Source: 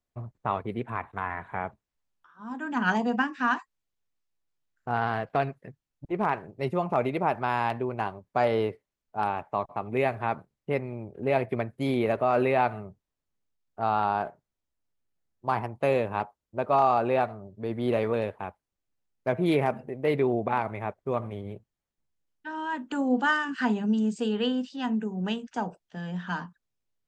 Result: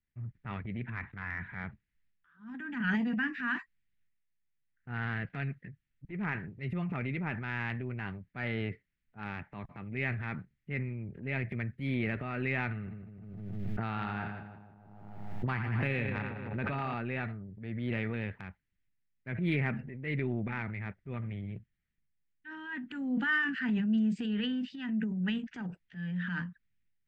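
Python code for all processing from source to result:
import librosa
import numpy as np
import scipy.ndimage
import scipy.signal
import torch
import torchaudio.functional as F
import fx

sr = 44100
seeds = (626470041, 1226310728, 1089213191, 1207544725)

y = fx.chain(x, sr, fx.echo_split(split_hz=860.0, low_ms=155, high_ms=85, feedback_pct=52, wet_db=-7.0),
    fx.pre_swell(db_per_s=32.0), at=(12.71, 16.94))
y = fx.curve_eq(y, sr, hz=(190.0, 630.0, 1000.0, 1900.0, 6700.0), db=(0, -21, -17, 3, -21))
y = fx.transient(y, sr, attack_db=-6, sustain_db=7)
y = fx.notch(y, sr, hz=1100.0, q=15.0)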